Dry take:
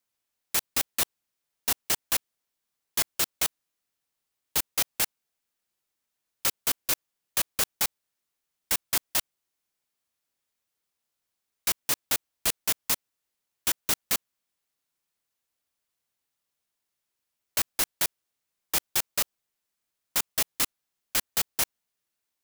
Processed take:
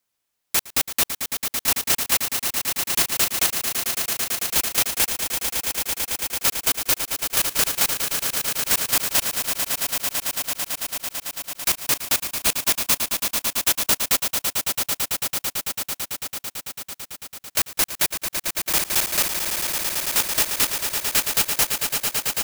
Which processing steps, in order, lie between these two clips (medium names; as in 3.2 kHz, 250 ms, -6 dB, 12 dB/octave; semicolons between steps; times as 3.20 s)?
rattle on loud lows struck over -43 dBFS, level -27 dBFS; echo with a slow build-up 111 ms, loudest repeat 8, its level -10 dB; trim +5 dB